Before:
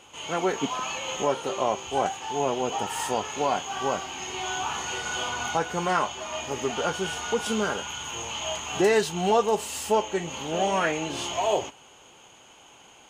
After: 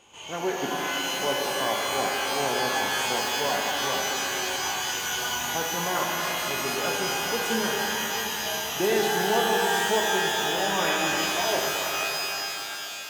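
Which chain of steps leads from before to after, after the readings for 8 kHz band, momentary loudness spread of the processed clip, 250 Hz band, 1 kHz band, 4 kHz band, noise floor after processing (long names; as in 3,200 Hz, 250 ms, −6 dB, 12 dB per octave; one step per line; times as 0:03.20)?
+4.5 dB, 5 LU, −1.0 dB, +0.5 dB, +6.0 dB, −35 dBFS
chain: notch filter 1,300 Hz, Q 10
reverb with rising layers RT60 3.6 s, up +12 semitones, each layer −2 dB, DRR −1 dB
level −5 dB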